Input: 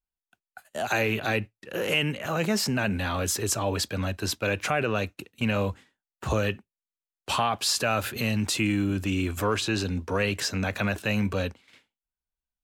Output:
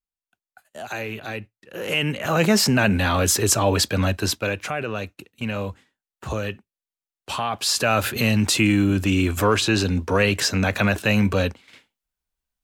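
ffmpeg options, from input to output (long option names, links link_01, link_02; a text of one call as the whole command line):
ffmpeg -i in.wav -af "volume=16.5dB,afade=type=in:start_time=1.72:duration=0.69:silence=0.223872,afade=type=out:start_time=4.11:duration=0.5:silence=0.334965,afade=type=in:start_time=7.39:duration=0.67:silence=0.375837" out.wav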